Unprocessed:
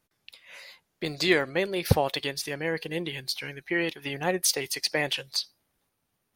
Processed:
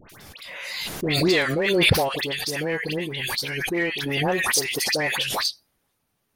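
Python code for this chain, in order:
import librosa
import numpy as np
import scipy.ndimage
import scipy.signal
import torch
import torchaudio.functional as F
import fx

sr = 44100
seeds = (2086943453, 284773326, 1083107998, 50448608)

p1 = fx.dispersion(x, sr, late='highs', ms=98.0, hz=1600.0)
p2 = np.clip(p1, -10.0 ** (-25.0 / 20.0), 10.0 ** (-25.0 / 20.0))
p3 = p1 + F.gain(torch.from_numpy(p2), -7.0).numpy()
y = fx.pre_swell(p3, sr, db_per_s=26.0)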